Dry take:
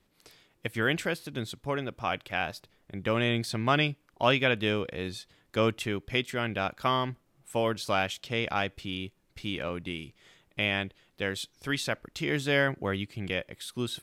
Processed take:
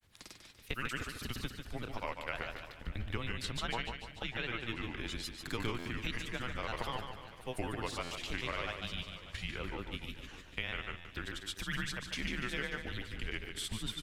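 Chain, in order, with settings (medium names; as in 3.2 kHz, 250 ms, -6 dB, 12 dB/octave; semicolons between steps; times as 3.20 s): peaking EQ 530 Hz -6 dB 2 oct; compression 6:1, threshold -39 dBFS, peak gain reduction 16.5 dB; granulator, pitch spread up and down by 3 st; frequency shift -120 Hz; on a send: feedback delay 146 ms, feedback 47%, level -7 dB; on the sum: buffer glitch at 5.78/8.03/10.97 s, samples 512, times 6; modulated delay 592 ms, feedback 52%, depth 123 cents, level -17 dB; trim +5 dB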